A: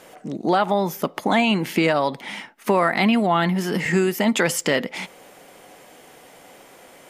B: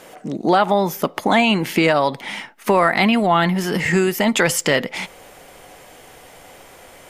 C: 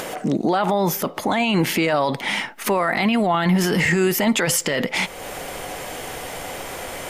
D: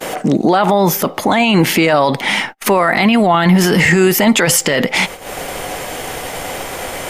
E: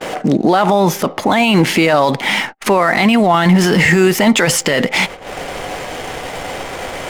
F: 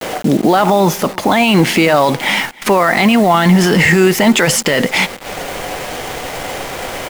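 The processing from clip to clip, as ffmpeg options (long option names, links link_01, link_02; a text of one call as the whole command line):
ffmpeg -i in.wav -af "asubboost=boost=5.5:cutoff=89,volume=4dB" out.wav
ffmpeg -i in.wav -filter_complex "[0:a]asplit=2[link_01][link_02];[link_02]acompressor=mode=upward:threshold=-22dB:ratio=2.5,volume=1dB[link_03];[link_01][link_03]amix=inputs=2:normalize=0,alimiter=limit=-9dB:level=0:latency=1:release=19,volume=-1.5dB" out.wav
ffmpeg -i in.wav -af "aeval=exprs='val(0)+0.00355*sin(2*PI*780*n/s)':channel_layout=same,agate=range=-36dB:threshold=-32dB:ratio=16:detection=peak,volume=7.5dB" out.wav
ffmpeg -i in.wav -af "adynamicsmooth=sensitivity=7.5:basefreq=1900" out.wav
ffmpeg -i in.wav -af "acrusher=bits=4:mix=0:aa=0.000001,aecho=1:1:305:0.0708,volume=1dB" out.wav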